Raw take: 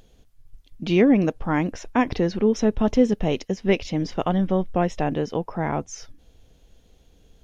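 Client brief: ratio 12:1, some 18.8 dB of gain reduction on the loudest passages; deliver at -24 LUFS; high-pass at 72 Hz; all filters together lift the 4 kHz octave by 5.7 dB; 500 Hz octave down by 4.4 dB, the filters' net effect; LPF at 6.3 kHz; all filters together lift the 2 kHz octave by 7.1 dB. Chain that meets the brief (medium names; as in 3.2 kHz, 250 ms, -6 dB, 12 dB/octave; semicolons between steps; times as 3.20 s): high-pass 72 Hz; low-pass 6.3 kHz; peaking EQ 500 Hz -6 dB; peaking EQ 2 kHz +7.5 dB; peaking EQ 4 kHz +5.5 dB; compression 12:1, threshold -33 dBFS; trim +14.5 dB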